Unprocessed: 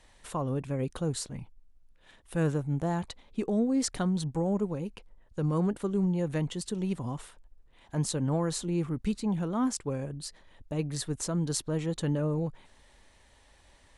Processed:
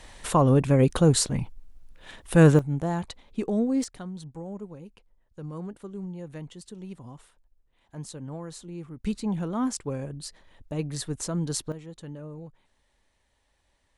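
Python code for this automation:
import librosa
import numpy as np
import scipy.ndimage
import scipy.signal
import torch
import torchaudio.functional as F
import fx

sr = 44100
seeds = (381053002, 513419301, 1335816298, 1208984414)

y = fx.gain(x, sr, db=fx.steps((0.0, 12.0), (2.59, 2.0), (3.84, -9.0), (9.04, 1.0), (11.72, -11.0)))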